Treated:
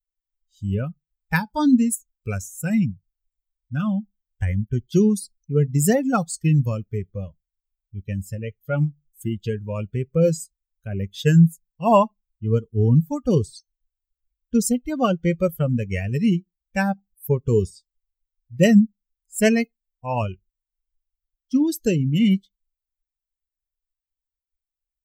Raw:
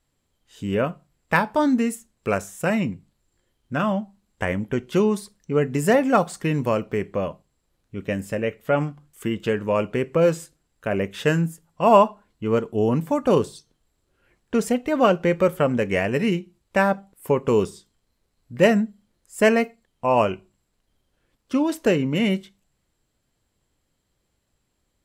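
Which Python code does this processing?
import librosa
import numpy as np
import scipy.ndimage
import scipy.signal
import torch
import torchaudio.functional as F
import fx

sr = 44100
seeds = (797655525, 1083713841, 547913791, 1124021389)

y = fx.bin_expand(x, sr, power=2.0)
y = fx.bass_treble(y, sr, bass_db=14, treble_db=13)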